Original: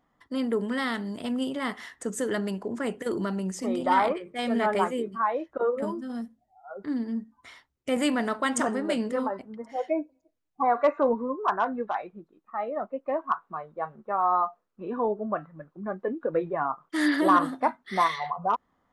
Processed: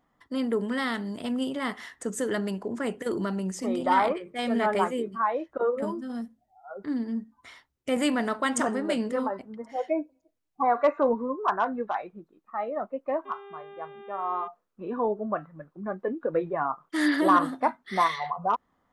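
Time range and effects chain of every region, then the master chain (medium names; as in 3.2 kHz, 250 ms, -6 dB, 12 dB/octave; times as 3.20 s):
13.25–14.46 s: mains buzz 400 Hz, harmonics 9, -38 dBFS -8 dB/octave + feedback comb 120 Hz, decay 0.39 s, harmonics odd
whole clip: none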